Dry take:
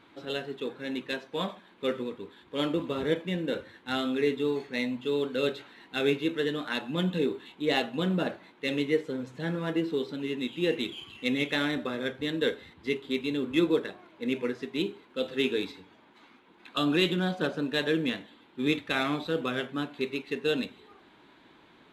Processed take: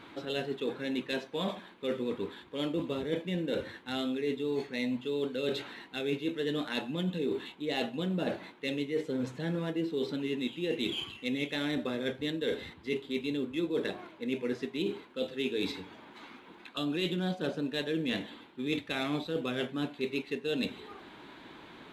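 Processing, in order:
dynamic equaliser 1,300 Hz, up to −6 dB, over −45 dBFS, Q 1.3
reversed playback
downward compressor 6 to 1, threshold −37 dBFS, peak gain reduction 16 dB
reversed playback
level +7 dB

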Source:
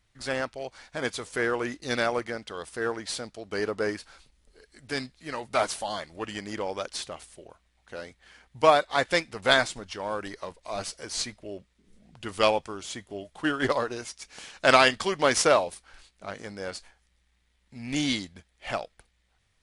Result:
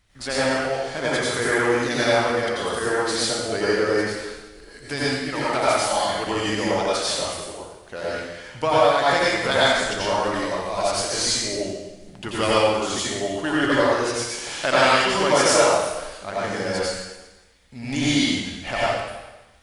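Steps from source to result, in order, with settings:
downward compressor 2 to 1, threshold −33 dBFS, peak gain reduction 11.5 dB
dense smooth reverb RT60 1.1 s, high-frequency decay 1×, pre-delay 75 ms, DRR −8 dB
level +5 dB

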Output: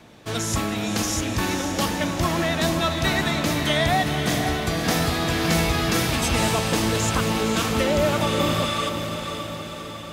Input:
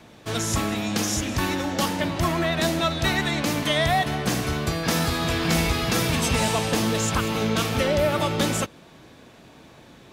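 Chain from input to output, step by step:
healed spectral selection 0:08.28–0:08.87, 1,100–12,000 Hz before
feedback delay with all-pass diffusion 530 ms, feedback 60%, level −7 dB

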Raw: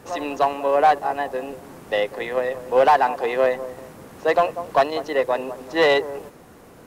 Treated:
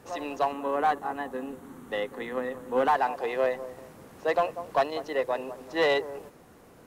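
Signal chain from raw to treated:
0:00.52–0:02.96: thirty-one-band graphic EQ 250 Hz +11 dB, 630 Hz −9 dB, 1,250 Hz +4 dB, 2,500 Hz −5 dB, 5,000 Hz −10 dB
level −7 dB

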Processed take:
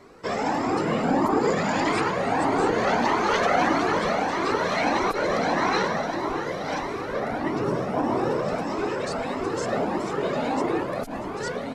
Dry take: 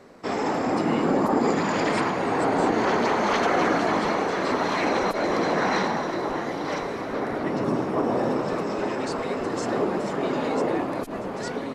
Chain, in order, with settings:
flanger whose copies keep moving one way rising 1.6 Hz
level +5 dB

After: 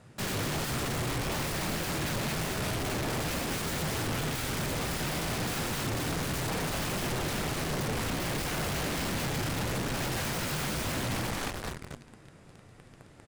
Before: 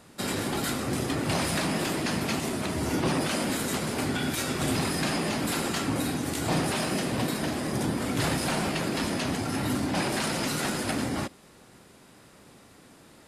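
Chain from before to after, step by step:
graphic EQ with 10 bands 125 Hz +9 dB, 250 Hz −6 dB, 1,000 Hz −4 dB, 4,000 Hz −5 dB
on a send: echo with shifted repeats 226 ms, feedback 44%, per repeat −88 Hz, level −7 dB
on the sum: flanger 0.7 Hz, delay 7.7 ms, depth 6.4 ms, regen −53%
in parallel at −9.5 dB: fuzz pedal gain 46 dB, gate −47 dBFS
on the sum: low-pass filter 9,100 Hz
wave folding −29.5 dBFS
high-shelf EQ 4,200 Hz −6 dB
level +3 dB

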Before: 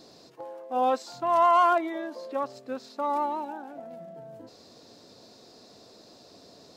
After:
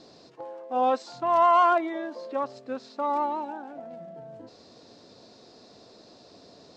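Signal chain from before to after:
Bessel low-pass filter 5,500 Hz, order 8
level +1 dB

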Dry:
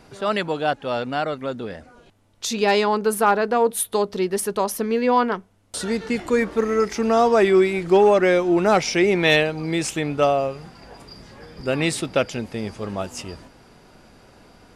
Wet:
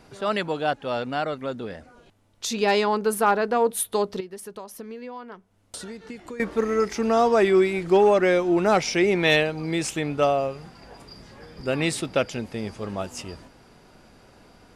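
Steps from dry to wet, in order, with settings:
0:04.20–0:06.40: downward compressor 12 to 1, threshold −32 dBFS, peak gain reduction 19 dB
level −2.5 dB

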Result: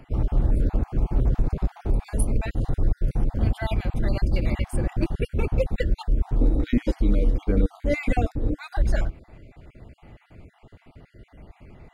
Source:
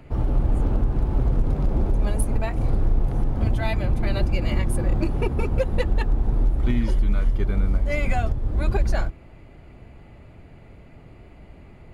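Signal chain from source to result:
time-frequency cells dropped at random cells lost 36%
0:06.41–0:08.59: hollow resonant body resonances 300/470/3,800 Hz, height 14 dB, ringing for 40 ms
dynamic equaliser 1,000 Hz, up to −4 dB, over −45 dBFS, Q 1.8

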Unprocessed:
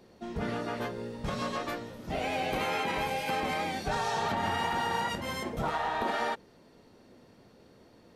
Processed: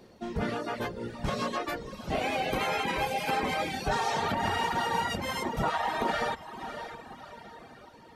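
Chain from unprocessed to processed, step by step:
feedback delay with all-pass diffusion 602 ms, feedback 46%, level −9.5 dB
reverb reduction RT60 1 s
level +3.5 dB

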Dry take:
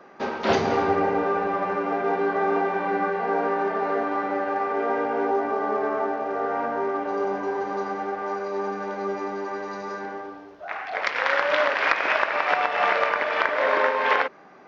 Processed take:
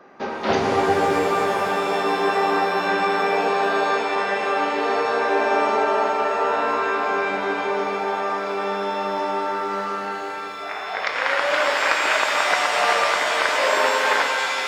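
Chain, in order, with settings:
reverb with rising layers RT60 3.6 s, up +7 semitones, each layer −2 dB, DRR 3.5 dB

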